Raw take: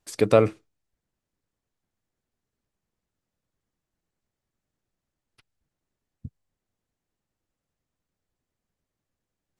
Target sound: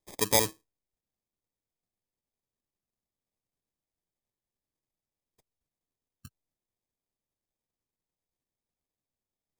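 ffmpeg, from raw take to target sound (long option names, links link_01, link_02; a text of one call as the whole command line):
ffmpeg -i in.wav -af "acrusher=samples=31:mix=1:aa=0.000001,bass=frequency=250:gain=-2,treble=frequency=4000:gain=14,volume=-10dB" out.wav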